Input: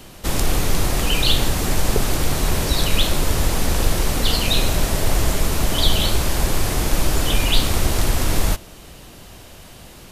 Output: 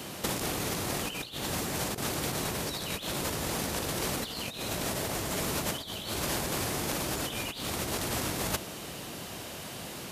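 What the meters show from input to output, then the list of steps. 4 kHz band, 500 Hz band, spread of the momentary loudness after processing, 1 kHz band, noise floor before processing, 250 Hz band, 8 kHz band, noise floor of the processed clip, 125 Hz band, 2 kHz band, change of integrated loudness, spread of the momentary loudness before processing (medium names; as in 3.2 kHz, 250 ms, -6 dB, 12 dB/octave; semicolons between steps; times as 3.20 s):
-12.5 dB, -9.0 dB, 9 LU, -8.5 dB, -42 dBFS, -9.5 dB, -8.5 dB, -42 dBFS, -15.0 dB, -9.0 dB, -12.0 dB, 3 LU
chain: high-pass 130 Hz 12 dB/octave; compressor with a negative ratio -28 dBFS, ratio -0.5; trim -3.5 dB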